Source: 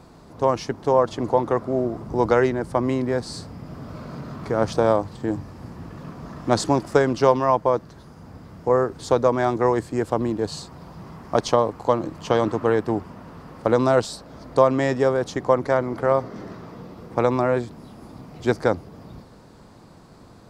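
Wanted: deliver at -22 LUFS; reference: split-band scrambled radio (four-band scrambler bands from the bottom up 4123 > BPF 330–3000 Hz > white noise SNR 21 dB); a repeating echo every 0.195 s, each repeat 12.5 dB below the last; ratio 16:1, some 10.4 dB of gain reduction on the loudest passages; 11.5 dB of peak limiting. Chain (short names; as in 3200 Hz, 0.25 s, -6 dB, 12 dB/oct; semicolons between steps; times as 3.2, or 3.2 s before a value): compressor 16:1, threshold -22 dBFS; limiter -19 dBFS; feedback echo 0.195 s, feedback 24%, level -12.5 dB; four-band scrambler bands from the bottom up 4123; BPF 330–3000 Hz; white noise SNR 21 dB; gain +8.5 dB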